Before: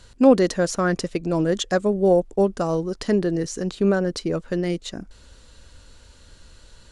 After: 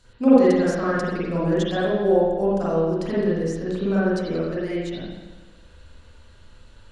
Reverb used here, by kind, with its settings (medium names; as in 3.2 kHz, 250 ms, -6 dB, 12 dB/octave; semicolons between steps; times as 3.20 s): spring tank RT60 1.2 s, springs 41/49 ms, chirp 50 ms, DRR -9.5 dB; trim -10 dB